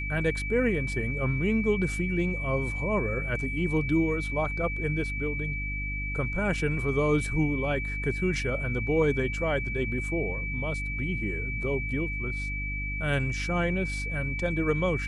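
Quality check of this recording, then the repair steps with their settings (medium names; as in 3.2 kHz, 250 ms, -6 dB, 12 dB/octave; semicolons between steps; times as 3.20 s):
hum 50 Hz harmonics 6 -34 dBFS
whine 2.3 kHz -33 dBFS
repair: de-hum 50 Hz, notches 6; band-stop 2.3 kHz, Q 30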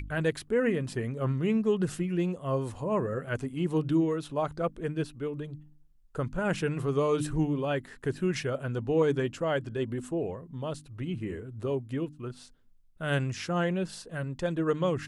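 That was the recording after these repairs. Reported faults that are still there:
nothing left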